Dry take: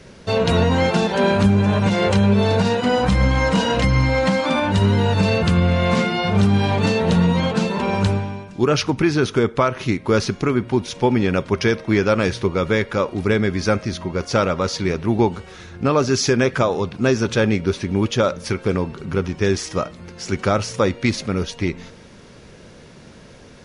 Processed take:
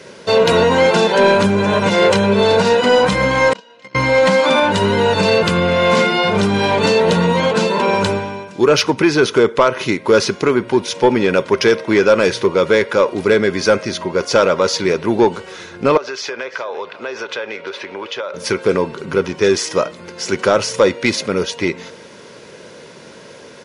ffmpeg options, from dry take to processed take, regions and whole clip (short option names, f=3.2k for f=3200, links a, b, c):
-filter_complex "[0:a]asettb=1/sr,asplit=3[a][b][c];[a]atrim=end=3.534[d];[b]atrim=start=3.53:end=3.95,asetpts=PTS-STARTPTS,afade=t=in:d=0.004:c=qsin,afade=t=out:st=0.416:d=0.004:c=qsin,highshelf=f=2.4k:g=8.5,agate=range=-35dB:threshold=-12dB:ratio=16:release=100:detection=peak,highpass=180,lowpass=5.2k[e];[c]atrim=start=3.946[f];[d][e]acrossfade=d=0.004:c1=hsin:c2=qsin[g];[g][f]acrossfade=d=0.004:c1=qsin:c2=hsin,asettb=1/sr,asplit=3[h][i][j];[h]atrim=end=15.974[k];[i]atrim=start=15.97:end=18.34,asetpts=PTS-STARTPTS,afade=t=in:d=0.004:c=qsin,afade=t=out:st=2.366:d=0.004:c=qsin,acrossover=split=460 4200:gain=0.0891 1 0.112[l][m][n];[l][m][n]amix=inputs=3:normalize=0,acompressor=threshold=-29dB:ratio=6:attack=3.2:release=140:knee=1:detection=peak,aecho=1:1:345:0.141,atrim=end_sample=104517[o];[j]atrim=start=18.336[p];[k][o]acrossfade=d=0.004:c1=hsin:c2=qsin[q];[q][p]acrossfade=d=0.004:c1=qsin:c2=hsin,highpass=230,aecho=1:1:2:0.33,acontrast=81"